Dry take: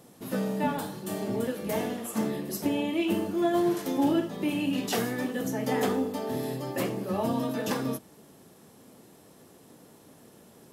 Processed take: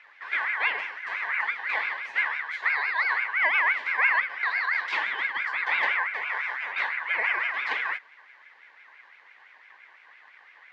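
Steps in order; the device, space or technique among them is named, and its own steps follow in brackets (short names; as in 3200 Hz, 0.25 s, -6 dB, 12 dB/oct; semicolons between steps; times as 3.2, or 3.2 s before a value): voice changer toy (ring modulator with a swept carrier 1600 Hz, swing 20%, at 5.9 Hz; speaker cabinet 560–3700 Hz, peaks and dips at 650 Hz -4 dB, 1300 Hz -7 dB, 2000 Hz +5 dB); gain +4 dB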